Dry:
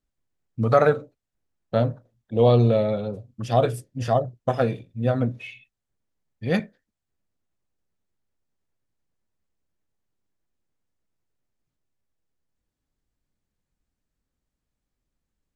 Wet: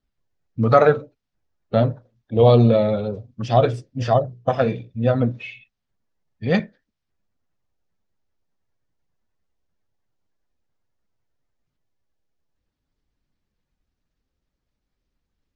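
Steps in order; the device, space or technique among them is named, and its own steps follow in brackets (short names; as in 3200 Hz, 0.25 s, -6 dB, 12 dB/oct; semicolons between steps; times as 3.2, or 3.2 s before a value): clip after many re-uploads (LPF 5900 Hz 24 dB/oct; bin magnitudes rounded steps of 15 dB); 4.24–4.9 notches 60/120/180/240/300/360/420/480 Hz; gain +4 dB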